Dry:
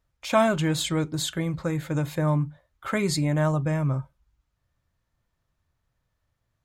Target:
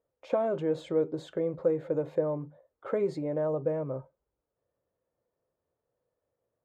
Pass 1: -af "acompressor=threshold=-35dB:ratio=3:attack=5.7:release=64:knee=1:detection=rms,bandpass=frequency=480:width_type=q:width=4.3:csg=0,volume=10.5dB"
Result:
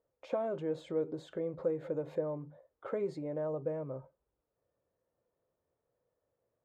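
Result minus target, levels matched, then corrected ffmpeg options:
downward compressor: peak gain reduction +6.5 dB
-af "acompressor=threshold=-25.5dB:ratio=3:attack=5.7:release=64:knee=1:detection=rms,bandpass=frequency=480:width_type=q:width=4.3:csg=0,volume=10.5dB"

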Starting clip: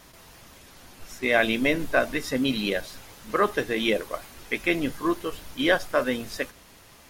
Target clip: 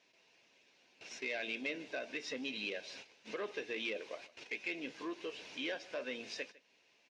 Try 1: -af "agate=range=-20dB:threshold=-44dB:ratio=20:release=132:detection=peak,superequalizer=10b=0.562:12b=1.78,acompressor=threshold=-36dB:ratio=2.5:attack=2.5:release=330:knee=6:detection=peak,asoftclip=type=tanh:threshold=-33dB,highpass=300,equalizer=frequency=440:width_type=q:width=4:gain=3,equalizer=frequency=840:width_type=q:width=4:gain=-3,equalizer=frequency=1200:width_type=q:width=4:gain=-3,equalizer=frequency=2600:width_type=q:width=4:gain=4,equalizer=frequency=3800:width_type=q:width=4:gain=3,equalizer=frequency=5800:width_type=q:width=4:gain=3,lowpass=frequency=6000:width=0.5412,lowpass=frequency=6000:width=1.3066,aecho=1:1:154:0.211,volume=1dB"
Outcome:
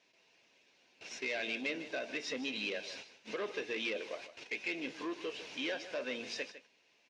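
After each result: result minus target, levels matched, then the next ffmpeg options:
echo-to-direct +7.5 dB; downward compressor: peak gain reduction −4 dB
-af "agate=range=-20dB:threshold=-44dB:ratio=20:release=132:detection=peak,superequalizer=10b=0.562:12b=1.78,acompressor=threshold=-36dB:ratio=2.5:attack=2.5:release=330:knee=6:detection=peak,asoftclip=type=tanh:threshold=-33dB,highpass=300,equalizer=frequency=440:width_type=q:width=4:gain=3,equalizer=frequency=840:width_type=q:width=4:gain=-3,equalizer=frequency=1200:width_type=q:width=4:gain=-3,equalizer=frequency=2600:width_type=q:width=4:gain=4,equalizer=frequency=3800:width_type=q:width=4:gain=3,equalizer=frequency=5800:width_type=q:width=4:gain=3,lowpass=frequency=6000:width=0.5412,lowpass=frequency=6000:width=1.3066,aecho=1:1:154:0.0891,volume=1dB"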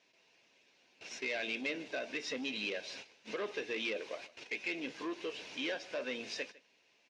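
downward compressor: peak gain reduction −4 dB
-af "agate=range=-20dB:threshold=-44dB:ratio=20:release=132:detection=peak,superequalizer=10b=0.562:12b=1.78,acompressor=threshold=-42.5dB:ratio=2.5:attack=2.5:release=330:knee=6:detection=peak,asoftclip=type=tanh:threshold=-33dB,highpass=300,equalizer=frequency=440:width_type=q:width=4:gain=3,equalizer=frequency=840:width_type=q:width=4:gain=-3,equalizer=frequency=1200:width_type=q:width=4:gain=-3,equalizer=frequency=2600:width_type=q:width=4:gain=4,equalizer=frequency=3800:width_type=q:width=4:gain=3,equalizer=frequency=5800:width_type=q:width=4:gain=3,lowpass=frequency=6000:width=0.5412,lowpass=frequency=6000:width=1.3066,aecho=1:1:154:0.0891,volume=1dB"

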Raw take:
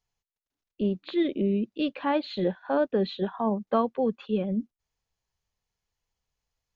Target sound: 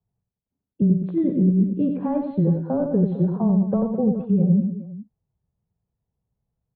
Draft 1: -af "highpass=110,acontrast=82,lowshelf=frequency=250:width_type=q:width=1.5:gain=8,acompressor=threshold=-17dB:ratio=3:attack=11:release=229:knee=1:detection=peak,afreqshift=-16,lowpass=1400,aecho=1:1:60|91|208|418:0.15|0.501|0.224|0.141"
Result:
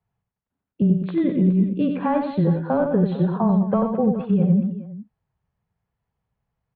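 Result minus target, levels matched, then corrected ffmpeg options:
1,000 Hz band +8.0 dB
-af "highpass=110,acontrast=82,lowshelf=frequency=250:width_type=q:width=1.5:gain=8,acompressor=threshold=-17dB:ratio=3:attack=11:release=229:knee=1:detection=peak,afreqshift=-16,lowpass=530,aecho=1:1:60|91|208|418:0.15|0.501|0.224|0.141"

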